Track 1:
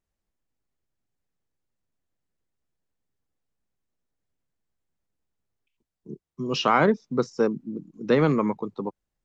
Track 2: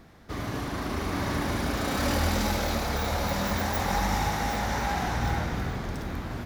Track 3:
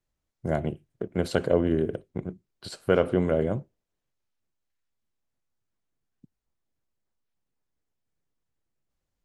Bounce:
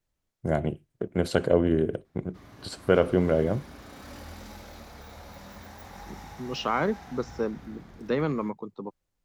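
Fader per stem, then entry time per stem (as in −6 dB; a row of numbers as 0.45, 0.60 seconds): −6.5, −17.5, +1.0 decibels; 0.00, 2.05, 0.00 seconds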